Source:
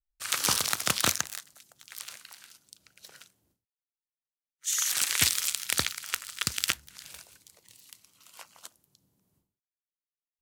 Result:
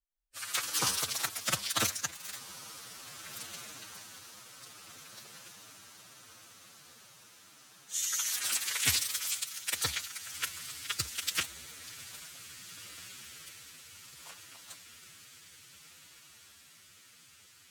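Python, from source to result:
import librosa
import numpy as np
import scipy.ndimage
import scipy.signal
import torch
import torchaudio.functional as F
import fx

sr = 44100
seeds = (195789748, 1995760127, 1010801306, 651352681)

y = fx.echo_diffused(x, sr, ms=1061, feedback_pct=63, wet_db=-14.5)
y = fx.stretch_vocoder(y, sr, factor=1.7)
y = F.gain(torch.from_numpy(y), -4.0).numpy()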